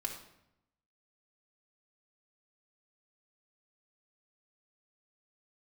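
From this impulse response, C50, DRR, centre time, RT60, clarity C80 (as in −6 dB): 6.5 dB, 0.5 dB, 23 ms, 0.80 s, 9.5 dB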